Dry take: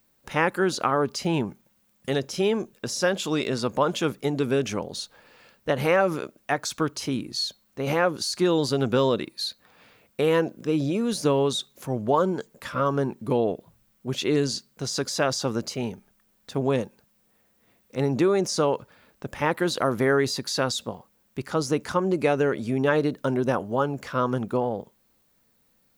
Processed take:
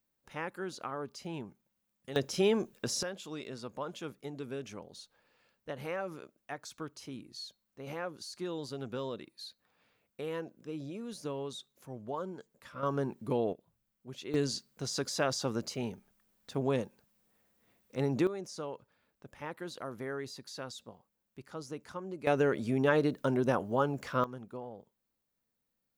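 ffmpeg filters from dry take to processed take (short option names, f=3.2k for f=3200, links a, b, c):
-af "asetnsamples=n=441:p=0,asendcmd='2.16 volume volume -4dB;3.03 volume volume -16.5dB;12.83 volume volume -8dB;13.53 volume volume -17dB;14.34 volume volume -7dB;18.27 volume volume -17.5dB;22.27 volume volume -5dB;24.24 volume volume -18dB',volume=-16dB"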